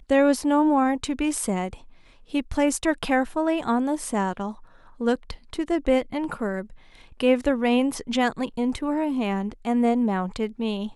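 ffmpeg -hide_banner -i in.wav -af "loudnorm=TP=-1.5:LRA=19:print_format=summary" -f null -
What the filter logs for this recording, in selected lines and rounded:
Input Integrated:    -24.7 LUFS
Input True Peak:      -7.5 dBTP
Input LRA:             2.4 LU
Input Threshold:     -35.0 LUFS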